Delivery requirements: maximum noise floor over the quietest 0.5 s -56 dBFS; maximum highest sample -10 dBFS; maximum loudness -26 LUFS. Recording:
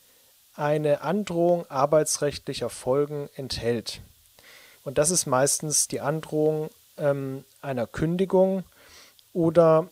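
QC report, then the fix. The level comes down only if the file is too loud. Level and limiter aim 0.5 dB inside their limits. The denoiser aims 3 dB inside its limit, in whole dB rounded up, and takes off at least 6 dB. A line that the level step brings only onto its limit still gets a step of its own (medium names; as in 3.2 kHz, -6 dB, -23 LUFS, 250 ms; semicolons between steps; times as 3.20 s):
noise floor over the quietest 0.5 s -58 dBFS: pass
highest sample -5.5 dBFS: fail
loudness -24.5 LUFS: fail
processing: trim -2 dB; peak limiter -10.5 dBFS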